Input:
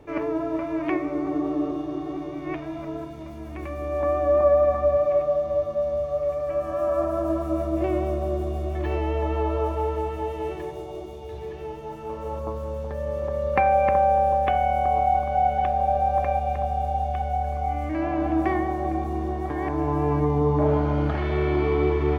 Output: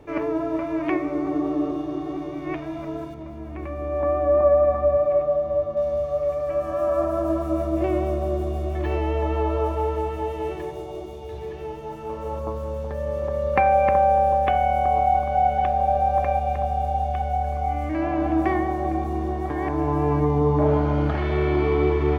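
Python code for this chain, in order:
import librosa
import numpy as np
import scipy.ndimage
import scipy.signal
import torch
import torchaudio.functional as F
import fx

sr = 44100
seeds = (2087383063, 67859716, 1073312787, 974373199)

y = fx.high_shelf(x, sr, hz=3100.0, db=-12.0, at=(3.14, 5.77))
y = y * 10.0 ** (1.5 / 20.0)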